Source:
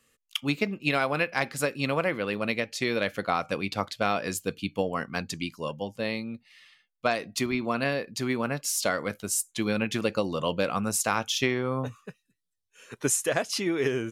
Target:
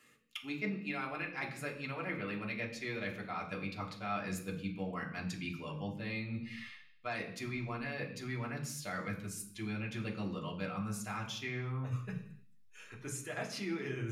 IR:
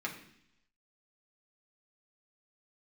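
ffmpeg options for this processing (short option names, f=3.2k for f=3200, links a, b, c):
-filter_complex "[0:a]asubboost=boost=6:cutoff=110,areverse,acompressor=threshold=-41dB:ratio=12,areverse[a];[1:a]atrim=start_sample=2205,afade=t=out:st=0.38:d=0.01,atrim=end_sample=17199[b];[a][b]afir=irnorm=-1:irlink=0,volume=3dB"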